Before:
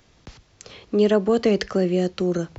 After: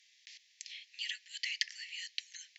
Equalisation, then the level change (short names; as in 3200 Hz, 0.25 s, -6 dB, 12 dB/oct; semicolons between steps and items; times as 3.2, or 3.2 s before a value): steep high-pass 1800 Hz 96 dB/oct; air absorption 72 m; high shelf 4100 Hz +7.5 dB; -3.5 dB